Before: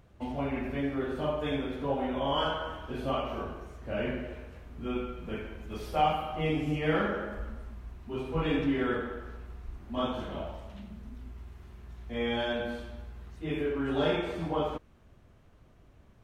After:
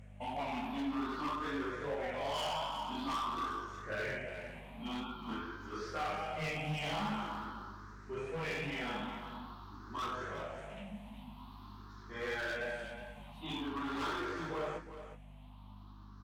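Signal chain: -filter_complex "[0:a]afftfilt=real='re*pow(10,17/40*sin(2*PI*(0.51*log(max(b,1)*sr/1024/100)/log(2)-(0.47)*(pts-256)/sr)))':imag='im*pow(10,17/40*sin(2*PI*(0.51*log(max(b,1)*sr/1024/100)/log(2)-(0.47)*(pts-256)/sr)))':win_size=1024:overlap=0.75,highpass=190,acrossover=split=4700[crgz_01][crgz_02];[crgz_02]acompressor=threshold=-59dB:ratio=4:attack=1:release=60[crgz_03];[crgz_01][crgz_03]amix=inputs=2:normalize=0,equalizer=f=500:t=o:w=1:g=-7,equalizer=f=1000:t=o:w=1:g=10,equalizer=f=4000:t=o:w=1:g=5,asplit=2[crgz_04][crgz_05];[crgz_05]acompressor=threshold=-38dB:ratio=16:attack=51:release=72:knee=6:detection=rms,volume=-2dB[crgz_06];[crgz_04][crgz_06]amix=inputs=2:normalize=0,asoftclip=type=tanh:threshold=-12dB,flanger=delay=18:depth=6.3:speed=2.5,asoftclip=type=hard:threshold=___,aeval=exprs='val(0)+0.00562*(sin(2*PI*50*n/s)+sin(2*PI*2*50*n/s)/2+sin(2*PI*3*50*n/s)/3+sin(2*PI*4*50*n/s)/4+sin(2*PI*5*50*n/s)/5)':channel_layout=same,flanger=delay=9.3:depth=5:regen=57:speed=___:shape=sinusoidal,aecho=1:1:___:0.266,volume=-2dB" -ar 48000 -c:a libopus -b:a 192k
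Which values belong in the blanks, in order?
-28.5dB, 0.5, 364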